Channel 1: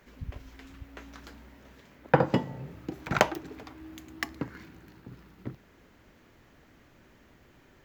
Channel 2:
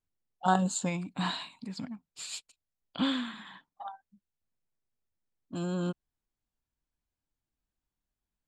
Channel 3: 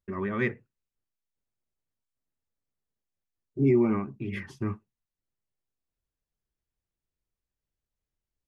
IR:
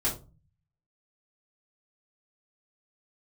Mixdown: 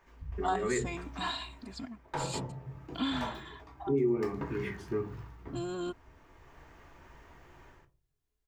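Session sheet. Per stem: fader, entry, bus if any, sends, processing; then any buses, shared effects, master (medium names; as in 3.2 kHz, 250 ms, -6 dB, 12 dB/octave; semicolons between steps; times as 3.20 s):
-8.0 dB, 0.00 s, send -12 dB, fifteen-band graphic EQ 250 Hz -9 dB, 1 kHz +7 dB, 4 kHz -4 dB, 16 kHz -10 dB; level rider gain up to 8.5 dB; saturation -16 dBFS, distortion -6 dB; auto duck -15 dB, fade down 0.30 s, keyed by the second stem
-3.0 dB, 0.00 s, no send, comb 2.9 ms, depth 75%
-5.0 dB, 0.30 s, send -12 dB, peaking EQ 430 Hz +12 dB 0.26 oct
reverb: on, RT60 0.30 s, pre-delay 3 ms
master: compression 2.5:1, threshold -29 dBFS, peak gain reduction 9.5 dB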